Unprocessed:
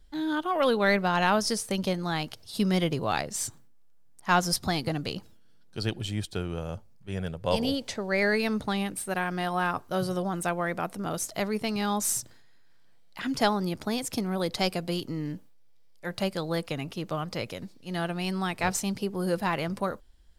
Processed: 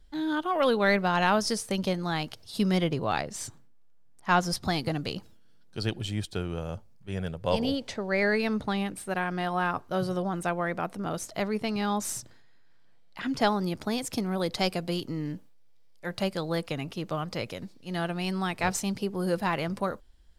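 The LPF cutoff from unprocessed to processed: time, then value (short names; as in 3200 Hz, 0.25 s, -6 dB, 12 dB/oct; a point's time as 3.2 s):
LPF 6 dB/oct
9100 Hz
from 2.78 s 4100 Hz
from 4.65 s 11000 Hz
from 7.5 s 4200 Hz
from 13.47 s 10000 Hz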